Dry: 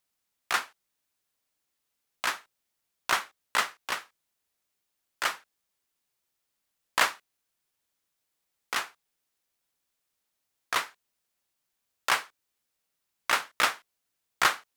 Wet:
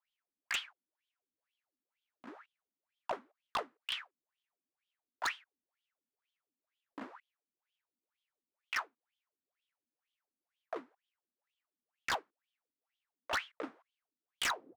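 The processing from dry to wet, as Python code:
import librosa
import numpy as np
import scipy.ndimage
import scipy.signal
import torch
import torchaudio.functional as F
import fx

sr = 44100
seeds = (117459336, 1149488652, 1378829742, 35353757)

y = fx.tape_stop_end(x, sr, length_s=0.31)
y = fx.wah_lfo(y, sr, hz=2.1, low_hz=240.0, high_hz=3300.0, q=9.2)
y = 10.0 ** (-33.5 / 20.0) * (np.abs((y / 10.0 ** (-33.5 / 20.0) + 3.0) % 4.0 - 2.0) - 1.0)
y = y * librosa.db_to_amplitude(7.0)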